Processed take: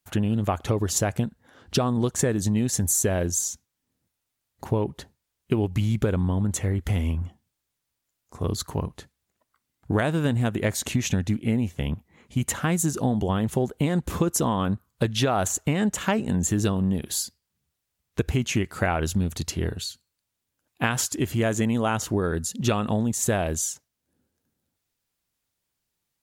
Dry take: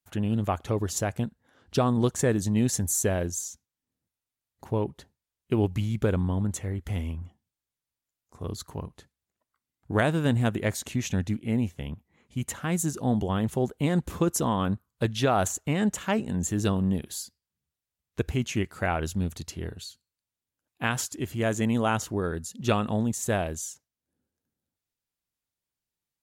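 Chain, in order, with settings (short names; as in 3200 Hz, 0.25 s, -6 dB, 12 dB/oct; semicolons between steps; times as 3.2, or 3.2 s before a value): compressor, threshold -28 dBFS, peak gain reduction 10 dB; gain +8.5 dB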